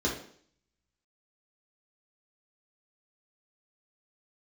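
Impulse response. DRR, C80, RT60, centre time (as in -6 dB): -4.0 dB, 10.5 dB, 0.55 s, 33 ms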